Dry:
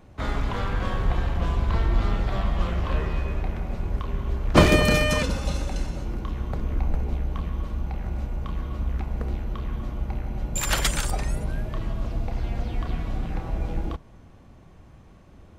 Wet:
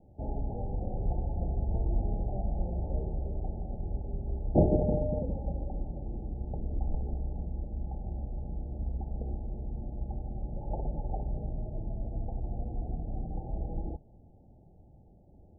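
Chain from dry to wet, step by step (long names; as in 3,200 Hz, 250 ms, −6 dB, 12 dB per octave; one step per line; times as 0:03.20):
Chebyshev low-pass filter 870 Hz, order 10
level −6.5 dB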